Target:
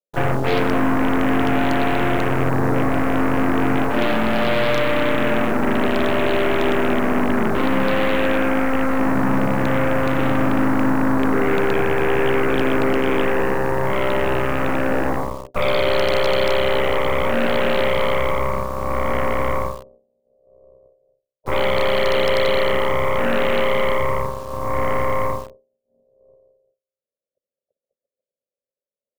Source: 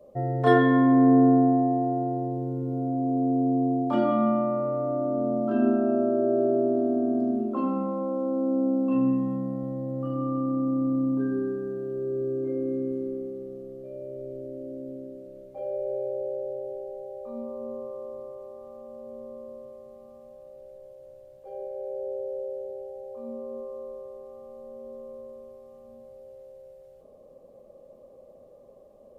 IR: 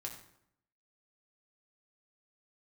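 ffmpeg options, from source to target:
-filter_complex "[0:a]agate=range=-58dB:threshold=-43dB:ratio=16:detection=peak,asplit=3[a][b][c];[b]asetrate=35002,aresample=44100,atempo=1.25992,volume=-12dB[d];[c]asetrate=52444,aresample=44100,atempo=0.840896,volume=-11dB[e];[a][d][e]amix=inputs=3:normalize=0,areverse,acompressor=threshold=-32dB:ratio=16,areverse,equalizer=f=125:t=o:w=1:g=8,equalizer=f=250:t=o:w=1:g=5,equalizer=f=500:t=o:w=1:g=10,equalizer=f=1k:t=o:w=1:g=4,equalizer=f=2k:t=o:w=1:g=-8,aeval=exprs='0.133*(cos(1*acos(clip(val(0)/0.133,-1,1)))-cos(1*PI/2))+0.00531*(cos(6*acos(clip(val(0)/0.133,-1,1)))-cos(6*PI/2))+0.0531*(cos(8*acos(clip(val(0)/0.133,-1,1)))-cos(8*PI/2))':c=same,acrossover=split=830[f][g];[g]acrusher=bits=7:mix=0:aa=0.000001[h];[f][h]amix=inputs=2:normalize=0,volume=5.5dB"

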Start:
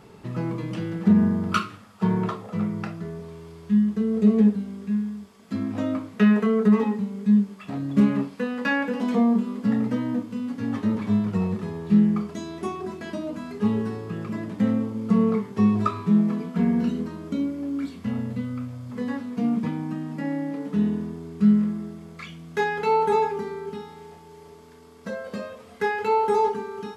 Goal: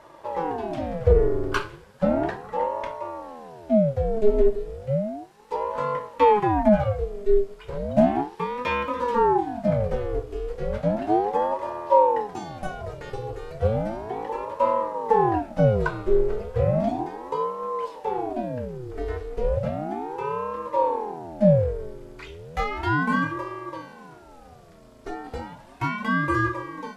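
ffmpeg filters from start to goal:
-af "lowshelf=f=200:g=6.5,aeval=exprs='val(0)*sin(2*PI*480*n/s+480*0.6/0.34*sin(2*PI*0.34*n/s))':c=same"

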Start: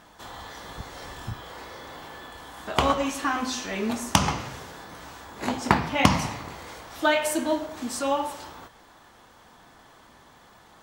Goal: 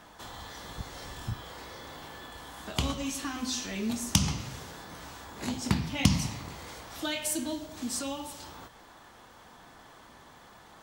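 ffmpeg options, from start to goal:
-filter_complex "[0:a]acrossover=split=260|3000[a][b][c];[b]acompressor=threshold=-46dB:ratio=2.5[d];[a][d][c]amix=inputs=3:normalize=0"

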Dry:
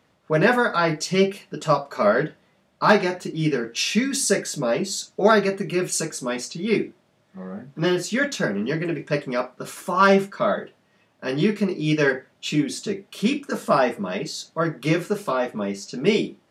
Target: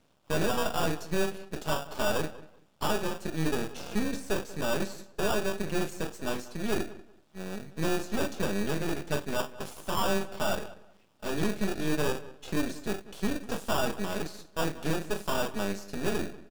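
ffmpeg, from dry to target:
-filter_complex "[0:a]acrossover=split=2200[a][b];[a]acrusher=samples=21:mix=1:aa=0.000001[c];[b]acompressor=threshold=-42dB:ratio=16[d];[c][d]amix=inputs=2:normalize=0,aeval=exprs='max(val(0),0)':c=same,alimiter=limit=-11dB:level=0:latency=1:release=430,asoftclip=type=tanh:threshold=-18dB,asplit=2[e][f];[f]adelay=189,lowpass=f=2.6k:p=1,volume=-17dB,asplit=2[g][h];[h]adelay=189,lowpass=f=2.6k:p=1,volume=0.23[i];[g][i]amix=inputs=2:normalize=0[j];[e][j]amix=inputs=2:normalize=0"

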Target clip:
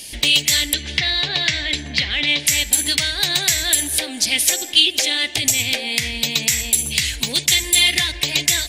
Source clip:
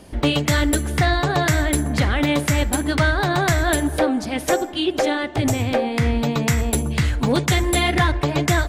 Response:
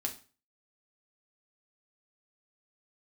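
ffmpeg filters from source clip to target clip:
-filter_complex "[0:a]asettb=1/sr,asplit=3[a][b][c];[a]atrim=end=0.734[d];[b]atrim=start=0.73:end=2.47,asetpts=PTS-STARTPTS,afade=t=in:d=0.004:c=qsin,afade=t=out:st=1.736:d=0.004:c=qsin,lowpass=f=4.4k:w=0.5412,lowpass=f=4.4k:w=1.3066[e];[c]atrim=start=2.466[f];[d][e]acrossfade=d=0.004:c1=hsin:c2=qsin[g];[g][f]acrossfade=d=0.004:c1=qsin:c2=hsin,acompressor=threshold=-21dB:ratio=6,aexciter=amount=10.6:drive=7.9:freq=2k,alimiter=level_in=-5.5dB:limit=-1dB:release=50:level=0:latency=1,volume=-1dB"

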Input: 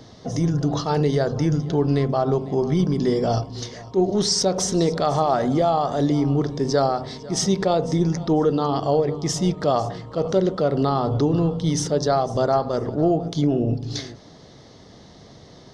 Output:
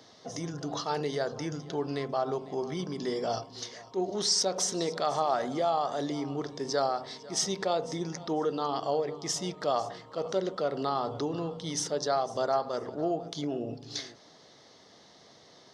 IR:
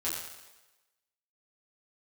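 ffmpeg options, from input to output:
-af "highpass=f=710:p=1,volume=-4.5dB"

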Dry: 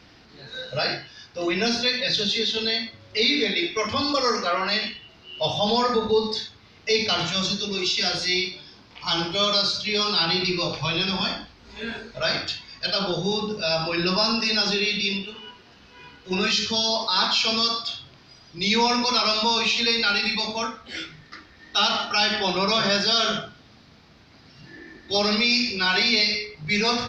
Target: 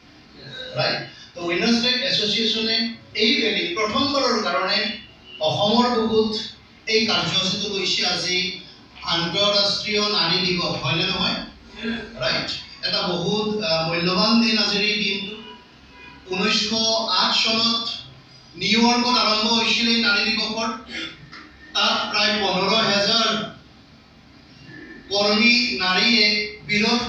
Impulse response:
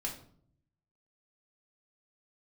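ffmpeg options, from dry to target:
-filter_complex "[0:a]highpass=50[a];[1:a]atrim=start_sample=2205,afade=t=out:st=0.17:d=0.01,atrim=end_sample=7938[b];[a][b]afir=irnorm=-1:irlink=0,volume=2dB"

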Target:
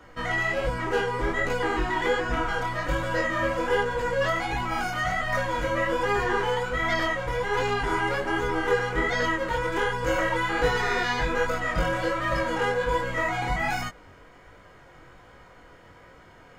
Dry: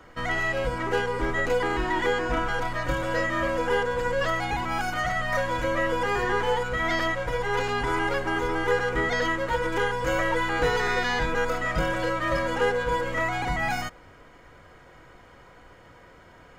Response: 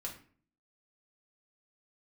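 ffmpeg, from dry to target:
-af "flanger=delay=17:depth=6.7:speed=1.3,volume=3dB"

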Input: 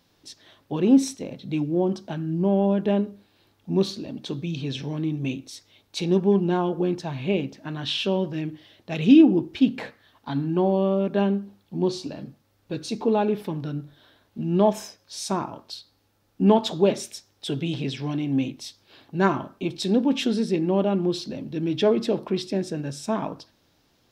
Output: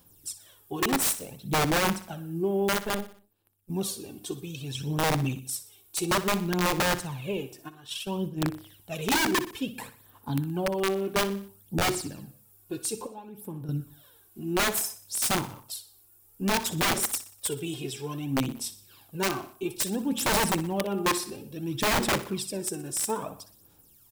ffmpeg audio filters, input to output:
-filter_complex "[0:a]asplit=3[a][b][c];[a]afade=t=out:st=7.68:d=0.02[d];[b]agate=range=-12dB:threshold=-26dB:ratio=16:detection=peak,afade=t=in:st=7.68:d=0.02,afade=t=out:st=8.4:d=0.02[e];[c]afade=t=in:st=8.4:d=0.02[f];[d][e][f]amix=inputs=3:normalize=0,equalizer=f=100:t=o:w=0.33:g=3,equalizer=f=250:t=o:w=0.33:g=-4,equalizer=f=630:t=o:w=0.33:g=-6,equalizer=f=2k:t=o:w=0.33:g=-8,equalizer=f=6.3k:t=o:w=0.33:g=-10,asettb=1/sr,asplit=3[g][h][i];[g]atrim=end=13.064[j];[h]atrim=start=13.06:end=13.69,asetpts=PTS-STARTPTS,afade=t=in:d=0.004:c=qsin,afade=t=out:st=0.626:d=0.004:c=qsin,acompressor=threshold=-38dB:ratio=6[k];[i]atrim=start=13.686[l];[j][k]acrossfade=d=0.004:c1=hsin:c2=qsin[m];[m][l]acrossfade=d=0.004:c1=qsin:c2=hsin,flanger=delay=0.3:depth=9.6:regen=89:speed=0.12:shape=sinusoidal,aexciter=amount=8.8:drive=7.1:freq=6.3k,aphaser=in_gain=1:out_gain=1:delay=2.8:decay=0.66:speed=0.59:type=sinusoidal,asettb=1/sr,asplit=3[n][o][p];[n]atrim=end=2.694[q];[o]atrim=start=2.69:end=3.7,asetpts=PTS-STARTPTS,afade=t=in:d=0.004:c=qsin,afade=t=out:st=1.006:d=0.004:c=qsin,aeval=exprs='0.168*(cos(1*acos(clip(val(0)/0.168,-1,1)))-cos(1*PI/2))+0.00376*(cos(4*acos(clip(val(0)/0.168,-1,1)))-cos(4*PI/2))+0.0188*(cos(6*acos(clip(val(0)/0.168,-1,1)))-cos(6*PI/2))+0.0211*(cos(7*acos(clip(val(0)/0.168,-1,1)))-cos(7*PI/2))':c=same[r];[p]atrim=start=3.696[s];[q][r]acrossfade=d=0.004:c1=hsin:c2=qsin[t];[t][s]acrossfade=d=0.004:c1=qsin:c2=hsin,aeval=exprs='(mod(7.94*val(0)+1,2)-1)/7.94':c=same,asplit=2[u][v];[v]aecho=0:1:61|122|183|244:0.188|0.0866|0.0399|0.0183[w];[u][w]amix=inputs=2:normalize=0,volume=-1dB"

